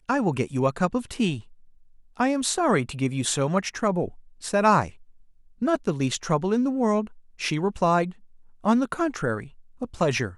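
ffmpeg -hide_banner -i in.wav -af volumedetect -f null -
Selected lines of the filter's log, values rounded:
mean_volume: -25.4 dB
max_volume: -8.0 dB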